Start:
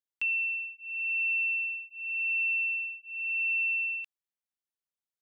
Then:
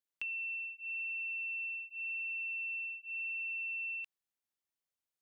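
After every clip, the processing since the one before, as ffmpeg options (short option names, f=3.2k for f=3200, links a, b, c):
-af "alimiter=level_in=5dB:limit=-24dB:level=0:latency=1,volume=-5dB,acompressor=threshold=-38dB:ratio=6"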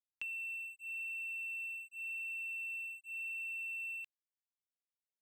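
-af "aeval=exprs='sgn(val(0))*max(abs(val(0))-0.00178,0)':c=same,volume=-1.5dB"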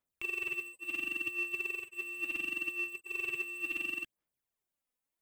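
-filter_complex "[0:a]aphaser=in_gain=1:out_gain=1:delay=4:decay=0.68:speed=0.71:type=sinusoidal,acrossover=split=3800|5900[a][b][c];[b]acrusher=samples=29:mix=1:aa=0.000001[d];[a][d][c]amix=inputs=3:normalize=0,volume=4dB"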